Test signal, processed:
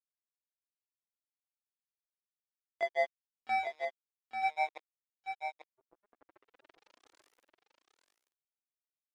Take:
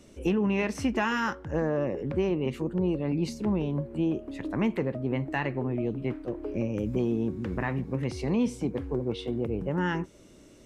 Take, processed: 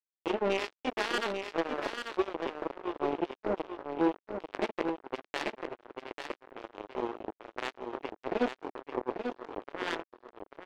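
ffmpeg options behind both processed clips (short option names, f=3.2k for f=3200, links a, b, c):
-filter_complex "[0:a]flanger=delay=18:depth=7.2:speed=0.4,lowpass=3.3k,asplit=2[a][b];[b]asplit=6[c][d][e][f][g][h];[c]adelay=164,afreqshift=-150,volume=-18dB[i];[d]adelay=328,afreqshift=-300,volume=-21.9dB[j];[e]adelay=492,afreqshift=-450,volume=-25.8dB[k];[f]adelay=656,afreqshift=-600,volume=-29.6dB[l];[g]adelay=820,afreqshift=-750,volume=-33.5dB[m];[h]adelay=984,afreqshift=-900,volume=-37.4dB[n];[i][j][k][l][m][n]amix=inputs=6:normalize=0[o];[a][o]amix=inputs=2:normalize=0,acrusher=bits=3:mix=0:aa=0.5,lowshelf=f=240:t=q:w=1.5:g=-12.5,asplit=2[p][q];[q]aecho=0:1:841:0.473[r];[p][r]amix=inputs=2:normalize=0"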